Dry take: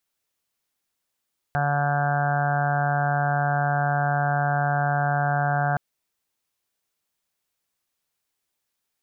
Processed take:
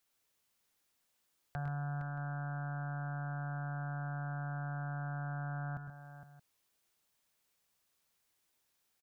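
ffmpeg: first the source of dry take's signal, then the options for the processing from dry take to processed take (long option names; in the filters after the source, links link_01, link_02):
-f lavfi -i "aevalsrc='0.0631*sin(2*PI*144*t)+0.00794*sin(2*PI*288*t)+0.00708*sin(2*PI*432*t)+0.02*sin(2*PI*576*t)+0.0631*sin(2*PI*720*t)+0.0211*sin(2*PI*864*t)+0.01*sin(2*PI*1008*t)+0.0141*sin(2*PI*1152*t)+0.0133*sin(2*PI*1296*t)+0.0237*sin(2*PI*1440*t)+0.0299*sin(2*PI*1584*t)+0.00794*sin(2*PI*1728*t)':duration=4.22:sample_rate=44100"
-filter_complex "[0:a]alimiter=level_in=1.5dB:limit=-24dB:level=0:latency=1:release=43,volume=-1.5dB,acrossover=split=220[link_01][link_02];[link_02]acompressor=threshold=-46dB:ratio=3[link_03];[link_01][link_03]amix=inputs=2:normalize=0,asplit=2[link_04][link_05];[link_05]aecho=0:1:105|128|462|625:0.355|0.316|0.299|0.106[link_06];[link_04][link_06]amix=inputs=2:normalize=0"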